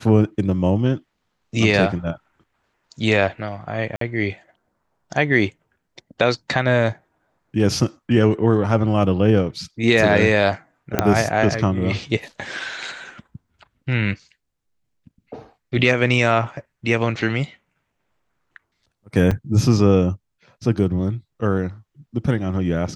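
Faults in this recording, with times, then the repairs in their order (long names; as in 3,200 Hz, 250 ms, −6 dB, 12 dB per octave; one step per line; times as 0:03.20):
0:03.96–0:04.01: drop-out 53 ms
0:10.99: click −2 dBFS
0:19.31–0:19.32: drop-out 5 ms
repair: click removal
repair the gap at 0:03.96, 53 ms
repair the gap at 0:19.31, 5 ms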